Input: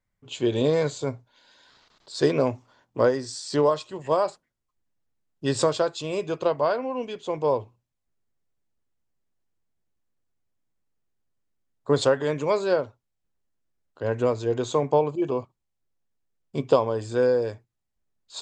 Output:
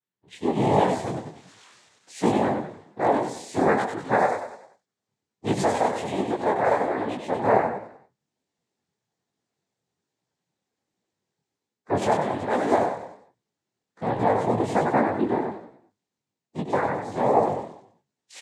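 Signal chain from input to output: coarse spectral quantiser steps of 15 dB; level rider gain up to 16 dB; on a send: feedback delay 96 ms, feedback 39%, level -5 dB; on the sum: noise-vocoded speech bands 6; dynamic bell 5.3 kHz, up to -8 dB, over -41 dBFS, Q 1.1; detune thickener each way 44 cents; trim -4.5 dB

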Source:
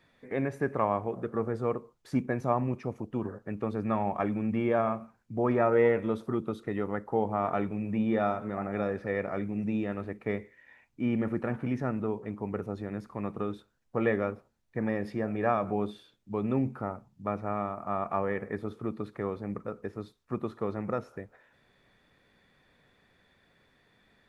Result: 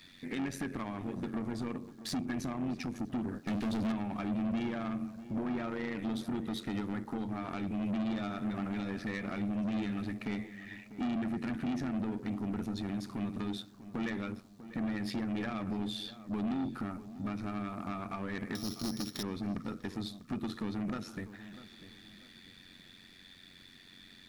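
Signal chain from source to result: 18.55–19.23 s: sorted samples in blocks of 8 samples; treble shelf 4 kHz +8 dB; in parallel at 0 dB: peak limiter -20 dBFS, peak gain reduction 8 dB; on the sum: compression 6:1, threshold -26 dBFS, peak gain reduction 10 dB; 3.47–3.92 s: waveshaping leveller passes 2; graphic EQ 125/250/500/1000/4000 Hz -5/+8/-12/-6/+8 dB; AM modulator 91 Hz, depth 60%; saturation -34.5 dBFS, distortion -7 dB; on a send: filtered feedback delay 646 ms, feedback 35%, low-pass 1.7 kHz, level -14 dB; on the sum: trim +4 dB

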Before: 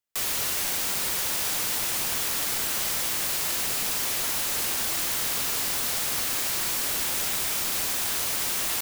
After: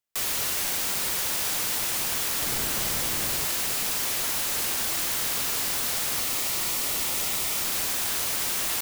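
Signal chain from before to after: 2.42–3.45 s: bass shelf 390 Hz +8 dB; 6.18–7.57 s: band-stop 1.6 kHz, Q 7

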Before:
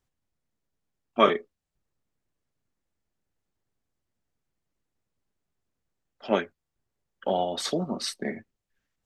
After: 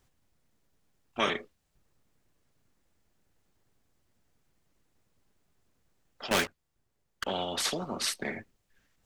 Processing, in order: dynamic bell 2.7 kHz, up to +4 dB, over -42 dBFS, Q 0.82; 6.31–7.25 s: waveshaping leveller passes 3; spectrum-flattening compressor 2:1; trim -9 dB

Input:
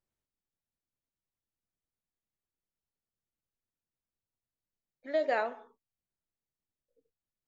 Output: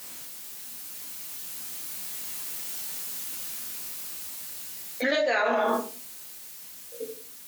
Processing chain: Doppler pass-by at 2.85 s, 12 m/s, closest 17 m; high-pass 72 Hz; tilt EQ +3.5 dB/octave; simulated room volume 250 m³, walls furnished, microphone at 1.9 m; level flattener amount 100%; trim +7 dB

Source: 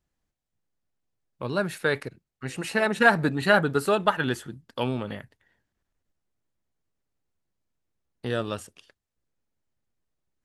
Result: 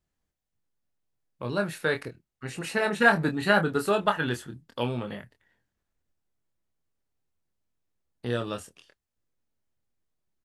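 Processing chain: doubling 25 ms -6.5 dB; trim -2.5 dB

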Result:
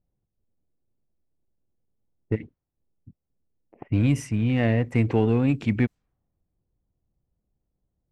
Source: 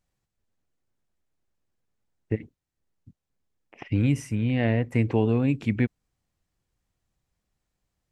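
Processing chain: level-controlled noise filter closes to 530 Hz, open at -21.5 dBFS; in parallel at -8 dB: hard clipper -25 dBFS, distortion -6 dB

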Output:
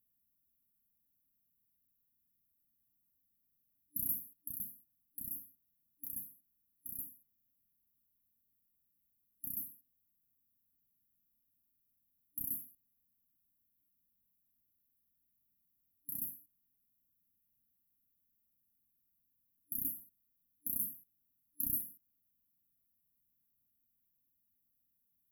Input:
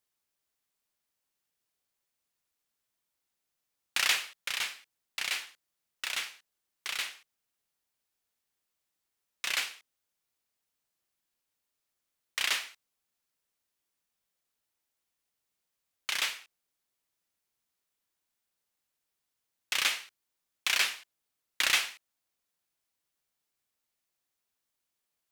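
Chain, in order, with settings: FFT band-reject 300–11000 Hz; trim +8 dB

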